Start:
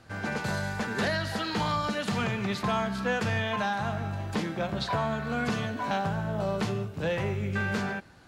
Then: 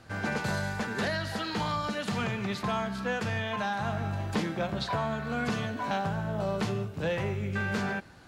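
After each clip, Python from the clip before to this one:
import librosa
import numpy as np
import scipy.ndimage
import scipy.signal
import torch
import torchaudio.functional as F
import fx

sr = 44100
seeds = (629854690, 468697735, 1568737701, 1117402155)

y = fx.rider(x, sr, range_db=10, speed_s=0.5)
y = y * 10.0 ** (-1.5 / 20.0)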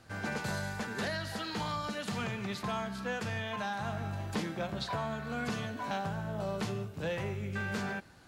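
y = fx.high_shelf(x, sr, hz=6100.0, db=6.0)
y = y * 10.0 ** (-5.0 / 20.0)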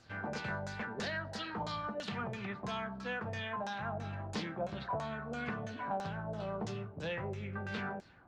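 y = fx.filter_lfo_lowpass(x, sr, shape='saw_down', hz=3.0, low_hz=530.0, high_hz=7200.0, q=2.1)
y = y * 10.0 ** (-4.5 / 20.0)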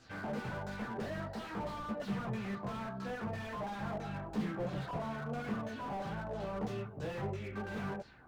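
y = fx.chorus_voices(x, sr, voices=6, hz=0.44, base_ms=19, depth_ms=4.7, mix_pct=50)
y = fx.slew_limit(y, sr, full_power_hz=5.0)
y = y * 10.0 ** (5.5 / 20.0)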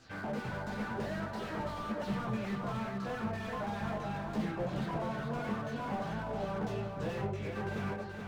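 y = fx.echo_feedback(x, sr, ms=427, feedback_pct=30, wet_db=-5.0)
y = y * 10.0 ** (1.5 / 20.0)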